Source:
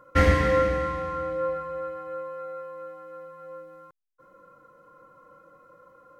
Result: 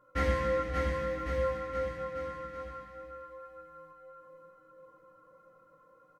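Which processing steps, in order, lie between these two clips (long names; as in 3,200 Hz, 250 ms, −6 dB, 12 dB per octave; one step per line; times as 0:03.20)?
multi-voice chorus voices 2, 0.61 Hz, delay 17 ms, depth 2 ms
bouncing-ball delay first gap 580 ms, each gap 0.9×, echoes 5
0:00.97–0:01.58: surface crackle 350 per second −50 dBFS
level −7 dB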